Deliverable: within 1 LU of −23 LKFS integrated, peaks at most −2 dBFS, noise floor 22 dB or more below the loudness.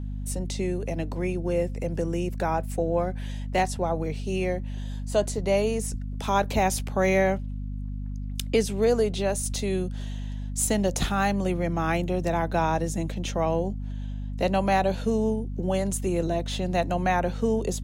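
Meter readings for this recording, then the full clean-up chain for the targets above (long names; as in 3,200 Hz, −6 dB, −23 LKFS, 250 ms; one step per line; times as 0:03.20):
mains hum 50 Hz; hum harmonics up to 250 Hz; level of the hum −30 dBFS; integrated loudness −27.0 LKFS; sample peak −10.5 dBFS; target loudness −23.0 LKFS
→ hum removal 50 Hz, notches 5
level +4 dB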